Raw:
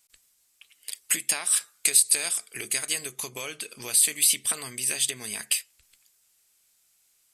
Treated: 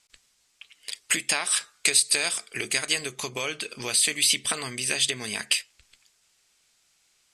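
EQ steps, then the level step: low-pass 5.9 kHz 12 dB/octave; +6.0 dB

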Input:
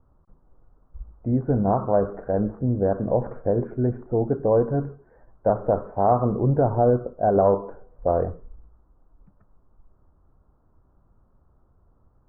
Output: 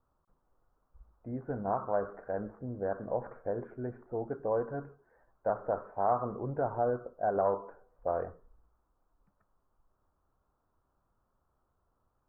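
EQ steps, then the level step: tilt shelf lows -4.5 dB, about 810 Hz; bass shelf 330 Hz -7 dB; dynamic bell 1.5 kHz, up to +3 dB, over -42 dBFS, Q 1.7; -7.5 dB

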